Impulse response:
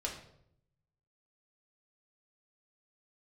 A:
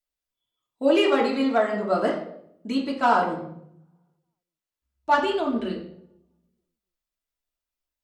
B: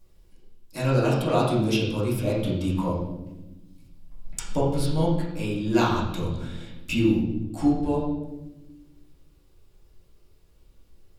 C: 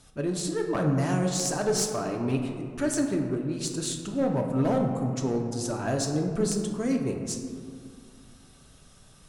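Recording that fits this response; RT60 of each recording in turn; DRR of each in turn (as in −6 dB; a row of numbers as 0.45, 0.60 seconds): A; 0.70 s, non-exponential decay, 2.2 s; −2.5, −9.5, 1.0 decibels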